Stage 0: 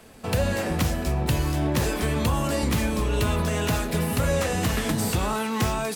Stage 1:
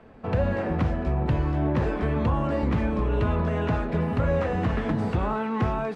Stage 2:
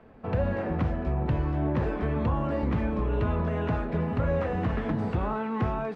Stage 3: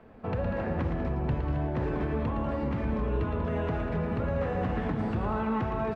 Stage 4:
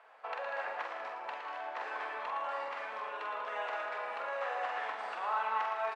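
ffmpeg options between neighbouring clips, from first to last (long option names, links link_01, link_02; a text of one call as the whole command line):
ffmpeg -i in.wav -af "lowpass=1600" out.wav
ffmpeg -i in.wav -af "aemphasis=mode=reproduction:type=cd,volume=-3dB" out.wav
ffmpeg -i in.wav -filter_complex "[0:a]alimiter=limit=-22.5dB:level=0:latency=1:release=190,asplit=2[link_01][link_02];[link_02]aecho=0:1:113.7|192.4|268.2:0.447|0.316|0.316[link_03];[link_01][link_03]amix=inputs=2:normalize=0" out.wav
ffmpeg -i in.wav -filter_complex "[0:a]highpass=frequency=760:width=0.5412,highpass=frequency=760:width=1.3066,asplit=2[link_01][link_02];[link_02]adelay=45,volume=-5dB[link_03];[link_01][link_03]amix=inputs=2:normalize=0,aresample=22050,aresample=44100,volume=1.5dB" out.wav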